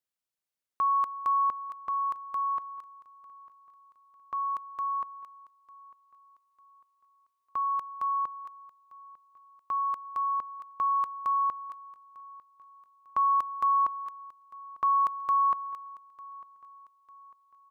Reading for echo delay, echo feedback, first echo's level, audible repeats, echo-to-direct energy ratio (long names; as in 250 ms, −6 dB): 899 ms, 43%, −21.0 dB, 2, −20.0 dB